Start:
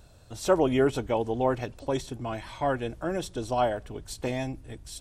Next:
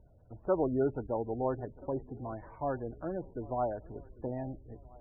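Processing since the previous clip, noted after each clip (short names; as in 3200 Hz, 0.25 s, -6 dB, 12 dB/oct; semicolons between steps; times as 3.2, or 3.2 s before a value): Bessel low-pass 1200 Hz, order 8; swung echo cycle 1.327 s, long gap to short 1.5:1, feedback 32%, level -21.5 dB; spectral gate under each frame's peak -25 dB strong; gain -6 dB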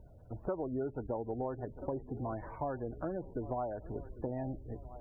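compressor 6:1, threshold -39 dBFS, peak gain reduction 15 dB; gain +5 dB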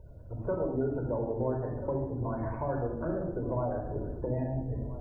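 shoebox room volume 3600 m³, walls furnished, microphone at 5 m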